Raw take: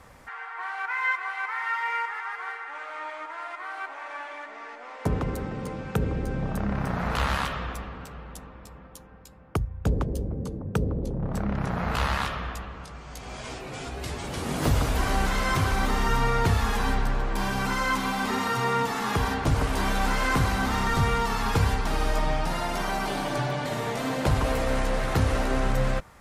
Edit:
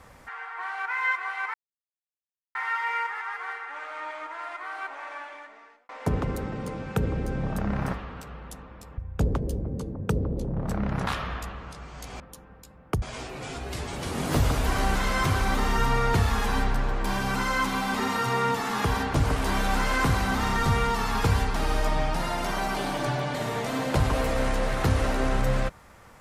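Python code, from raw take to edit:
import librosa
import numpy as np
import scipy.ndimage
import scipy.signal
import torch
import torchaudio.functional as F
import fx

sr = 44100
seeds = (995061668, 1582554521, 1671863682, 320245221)

y = fx.edit(x, sr, fx.insert_silence(at_s=1.54, length_s=1.01),
    fx.fade_out_span(start_s=4.03, length_s=0.85),
    fx.cut(start_s=6.93, length_s=0.85),
    fx.move(start_s=8.82, length_s=0.82, to_s=13.33),
    fx.cut(start_s=11.73, length_s=0.47), tone=tone)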